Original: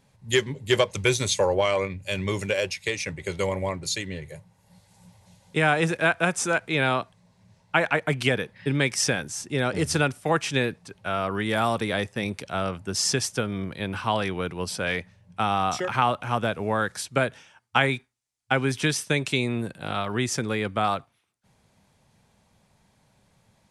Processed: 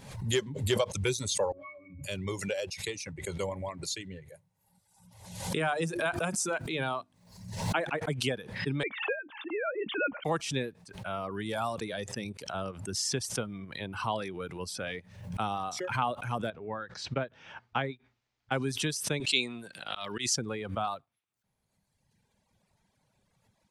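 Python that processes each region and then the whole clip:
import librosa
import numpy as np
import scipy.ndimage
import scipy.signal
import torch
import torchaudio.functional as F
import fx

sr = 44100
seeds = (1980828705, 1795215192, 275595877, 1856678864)

y = fx.chain(x, sr, fx.overload_stage(gain_db=19.5),
    fx.octave_resonator(note='C#', decay_s=0.15), at=(1.52, 2.04))
y = fx.chain(y, sr, fx.high_shelf(hz=8400.0, db=7.5),
    fx.hum_notches(base_hz=50, count=7),
    fx.pre_swell(db_per_s=63.0), at=(4.34, 7.9))
y = fx.chain(y, sr, fx.sine_speech(),
    fx.peak_eq(hz=400.0, db=-3.0, octaves=0.3),
    fx.doubler(ms=14.0, db=-13.0), at=(8.83, 10.25))
y = fx.chain(y, sr, fx.air_absorb(metres=210.0),
    fx.upward_expand(threshold_db=-40.0, expansion=1.5), at=(16.5, 18.52))
y = fx.chain(y, sr, fx.weighting(curve='D'),
    fx.auto_swell(attack_ms=107.0), at=(19.2, 20.36))
y = fx.dereverb_blind(y, sr, rt60_s=1.7)
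y = fx.dynamic_eq(y, sr, hz=2000.0, q=1.6, threshold_db=-40.0, ratio=4.0, max_db=-6)
y = fx.pre_swell(y, sr, db_per_s=77.0)
y = y * librosa.db_to_amplitude(-6.5)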